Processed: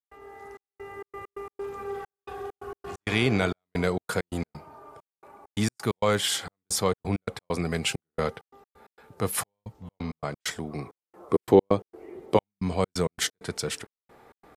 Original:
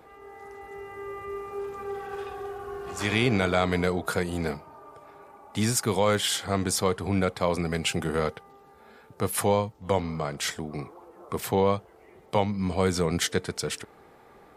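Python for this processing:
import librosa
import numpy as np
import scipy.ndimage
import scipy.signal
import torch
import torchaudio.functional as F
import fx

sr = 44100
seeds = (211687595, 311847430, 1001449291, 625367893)

y = fx.peak_eq(x, sr, hz=340.0, db=14.0, octaves=1.1, at=(11.31, 12.37))
y = fx.step_gate(y, sr, bpm=132, pattern='.xxxx..xx.x.x', floor_db=-60.0, edge_ms=4.5)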